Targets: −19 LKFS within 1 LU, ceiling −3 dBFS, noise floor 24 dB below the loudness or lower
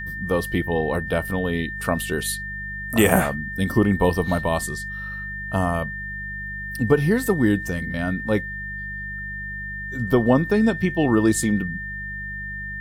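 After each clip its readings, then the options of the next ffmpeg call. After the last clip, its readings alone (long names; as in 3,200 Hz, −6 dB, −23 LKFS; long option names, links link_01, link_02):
mains hum 50 Hz; hum harmonics up to 200 Hz; level of the hum −34 dBFS; interfering tone 1,800 Hz; level of the tone −30 dBFS; integrated loudness −23.0 LKFS; sample peak −2.5 dBFS; target loudness −19.0 LKFS
→ -af "bandreject=frequency=50:width_type=h:width=4,bandreject=frequency=100:width_type=h:width=4,bandreject=frequency=150:width_type=h:width=4,bandreject=frequency=200:width_type=h:width=4"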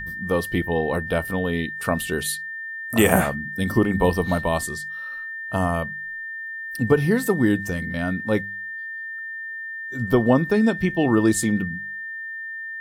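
mains hum none found; interfering tone 1,800 Hz; level of the tone −30 dBFS
→ -af "bandreject=frequency=1800:width=30"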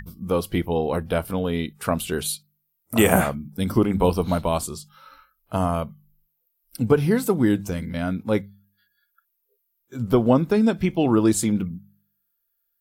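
interfering tone none found; integrated loudness −23.0 LKFS; sample peak −2.5 dBFS; target loudness −19.0 LKFS
→ -af "volume=4dB,alimiter=limit=-3dB:level=0:latency=1"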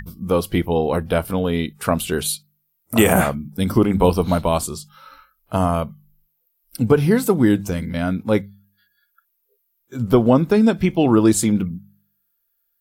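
integrated loudness −19.0 LKFS; sample peak −3.0 dBFS; background noise floor −71 dBFS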